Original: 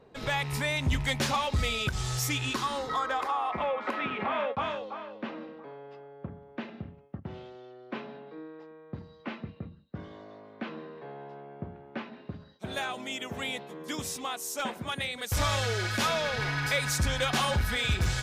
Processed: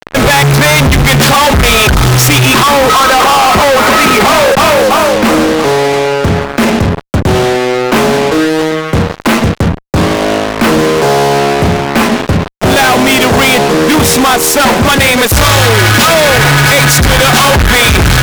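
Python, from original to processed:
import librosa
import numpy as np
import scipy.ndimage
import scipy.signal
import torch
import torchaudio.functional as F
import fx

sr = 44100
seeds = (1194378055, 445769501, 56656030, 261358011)

y = fx.wiener(x, sr, points=9)
y = fx.fuzz(y, sr, gain_db=56.0, gate_db=-50.0)
y = F.gain(torch.from_numpy(y), 7.5).numpy()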